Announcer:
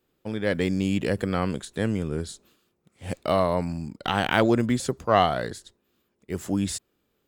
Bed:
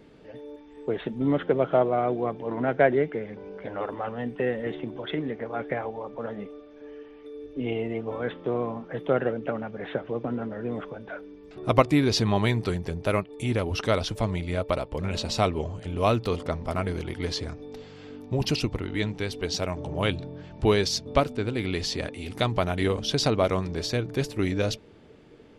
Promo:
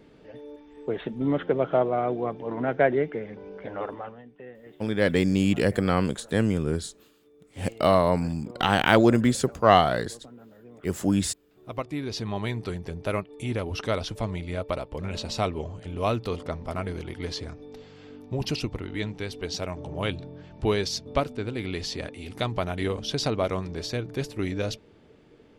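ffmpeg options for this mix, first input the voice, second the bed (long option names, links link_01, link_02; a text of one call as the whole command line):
ffmpeg -i stem1.wav -i stem2.wav -filter_complex "[0:a]adelay=4550,volume=2.5dB[link_01];[1:a]volume=13.5dB,afade=type=out:start_time=3.85:duration=0.38:silence=0.149624,afade=type=in:start_time=11.56:duration=1.46:silence=0.188365[link_02];[link_01][link_02]amix=inputs=2:normalize=0" out.wav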